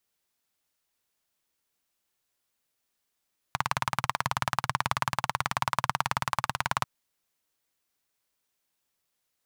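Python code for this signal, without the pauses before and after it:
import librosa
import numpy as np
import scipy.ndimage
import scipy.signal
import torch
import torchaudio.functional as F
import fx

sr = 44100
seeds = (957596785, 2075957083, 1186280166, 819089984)

y = fx.engine_single(sr, seeds[0], length_s=3.29, rpm=2200, resonances_hz=(130.0, 1000.0))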